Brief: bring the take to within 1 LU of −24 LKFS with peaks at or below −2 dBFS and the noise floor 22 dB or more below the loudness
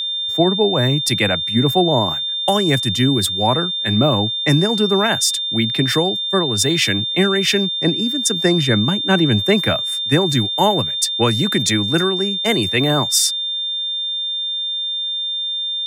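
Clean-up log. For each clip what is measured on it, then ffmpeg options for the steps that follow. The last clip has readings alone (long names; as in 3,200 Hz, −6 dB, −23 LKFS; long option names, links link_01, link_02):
interfering tone 3,600 Hz; level of the tone −20 dBFS; integrated loudness −16.5 LKFS; sample peak −2.5 dBFS; target loudness −24.0 LKFS
→ -af "bandreject=frequency=3600:width=30"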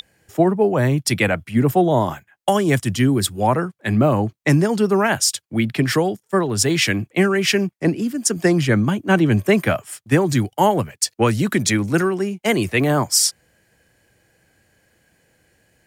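interfering tone none found; integrated loudness −18.5 LKFS; sample peak −3.0 dBFS; target loudness −24.0 LKFS
→ -af "volume=-5.5dB"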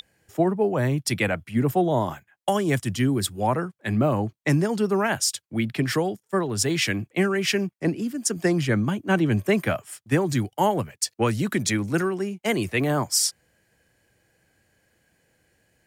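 integrated loudness −24.0 LKFS; sample peak −8.5 dBFS; background noise floor −74 dBFS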